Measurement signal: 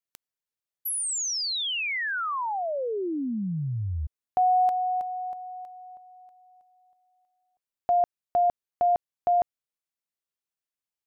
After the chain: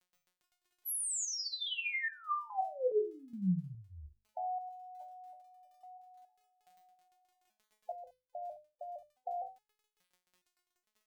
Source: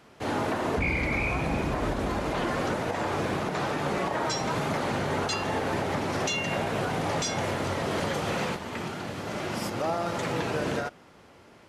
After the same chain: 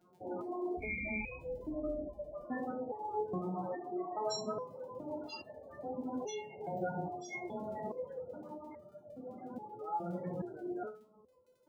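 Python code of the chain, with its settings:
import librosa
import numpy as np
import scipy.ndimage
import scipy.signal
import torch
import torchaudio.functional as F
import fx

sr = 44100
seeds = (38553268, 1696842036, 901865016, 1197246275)

y = fx.hum_notches(x, sr, base_hz=50, count=3)
y = fx.spec_topn(y, sr, count=16)
y = fx.room_early_taps(y, sr, ms=(26, 68), db=(-9.0, -12.5))
y = fx.dmg_crackle(y, sr, seeds[0], per_s=15.0, level_db=-42.0)
y = fx.resonator_held(y, sr, hz=2.4, low_hz=180.0, high_hz=600.0)
y = y * librosa.db_to_amplitude(5.5)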